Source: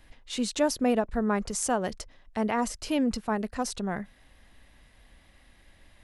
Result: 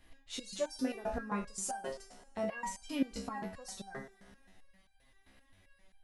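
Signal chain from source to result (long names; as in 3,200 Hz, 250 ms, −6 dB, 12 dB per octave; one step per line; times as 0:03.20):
coupled-rooms reverb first 0.44 s, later 2.2 s, from −18 dB, DRR 6.5 dB
step-sequenced resonator 7.6 Hz 66–790 Hz
level +2.5 dB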